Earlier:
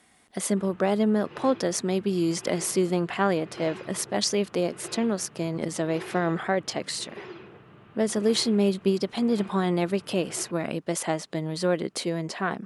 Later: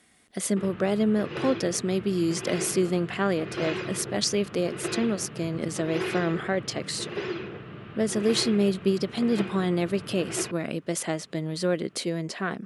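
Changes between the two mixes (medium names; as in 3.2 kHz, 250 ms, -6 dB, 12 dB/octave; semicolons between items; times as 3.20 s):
background +10.5 dB; master: add peaking EQ 880 Hz -7 dB 0.74 oct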